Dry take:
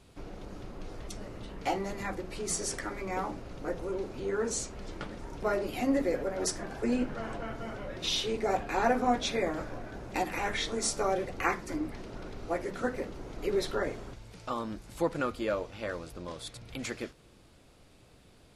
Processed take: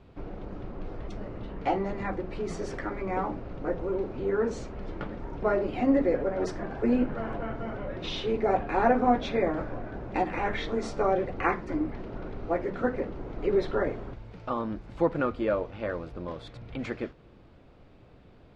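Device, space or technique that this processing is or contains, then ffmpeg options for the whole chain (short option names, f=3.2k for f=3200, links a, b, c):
phone in a pocket: -af "lowpass=3.4k,highshelf=f=2.1k:g=-9.5,volume=5dB"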